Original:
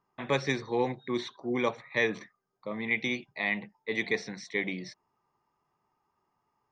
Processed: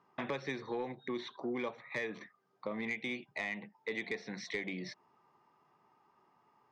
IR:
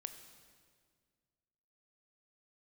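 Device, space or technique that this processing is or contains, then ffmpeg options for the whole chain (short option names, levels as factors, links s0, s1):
AM radio: -af "highpass=150,lowpass=4200,acompressor=threshold=0.00631:ratio=5,asoftclip=type=tanh:threshold=0.0211,volume=2.51"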